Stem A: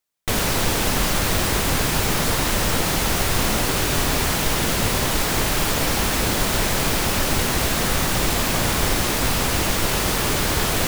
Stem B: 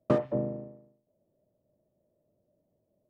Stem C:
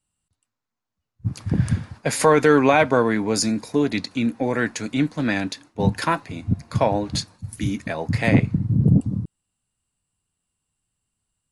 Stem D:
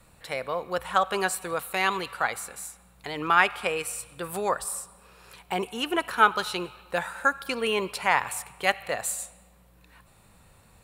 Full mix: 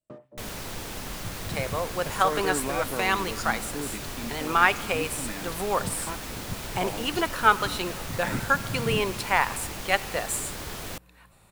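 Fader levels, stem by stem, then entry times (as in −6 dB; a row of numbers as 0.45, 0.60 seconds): −15.5, −20.0, −15.5, 0.0 decibels; 0.10, 0.00, 0.00, 1.25 seconds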